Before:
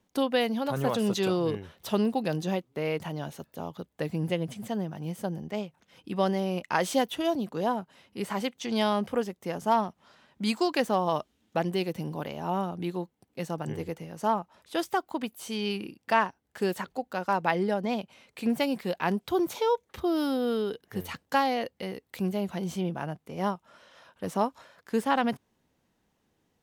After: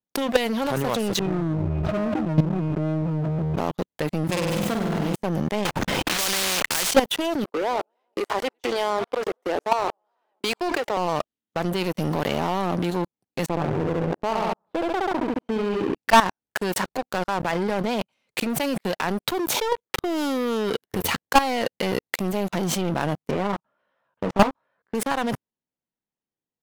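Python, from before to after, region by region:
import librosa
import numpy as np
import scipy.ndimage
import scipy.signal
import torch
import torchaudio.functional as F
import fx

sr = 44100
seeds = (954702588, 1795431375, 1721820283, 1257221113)

y = fx.chain(x, sr, fx.tilt_eq(slope=-4.0),
    fx.octave_resonator(note='D#', decay_s=0.28),
    fx.sustainer(db_per_s=31.0), at=(1.19, 3.58))
y = fx.chain(y, sr, fx.self_delay(depth_ms=0.52),
    fx.room_flutter(wall_m=8.5, rt60_s=0.98), at=(4.24, 5.15))
y = fx.chain(y, sr, fx.block_float(bits=3),
    fx.tilt_eq(slope=-3.5),
    fx.spectral_comp(ratio=10.0), at=(5.65, 6.91))
y = fx.chain(y, sr, fx.steep_highpass(hz=320.0, slope=36),
    fx.high_shelf(hz=2600.0, db=-11.5),
    fx.echo_warbled(ms=95, feedback_pct=64, rate_hz=2.8, cents=212, wet_db=-20.0), at=(7.44, 10.97))
y = fx.chain(y, sr, fx.lowpass(hz=1000.0, slope=12),
    fx.peak_eq(hz=210.0, db=-7.0, octaves=0.24),
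    fx.echo_feedback(ms=68, feedback_pct=41, wet_db=-4.0), at=(13.49, 15.96))
y = fx.chain(y, sr, fx.lowpass(hz=1900.0, slope=12),
    fx.doubler(ms=15.0, db=-4.5), at=(23.31, 24.95))
y = fx.peak_eq(y, sr, hz=67.0, db=-11.5, octaves=0.67)
y = fx.level_steps(y, sr, step_db=22)
y = fx.leveller(y, sr, passes=5)
y = y * librosa.db_to_amplitude(2.5)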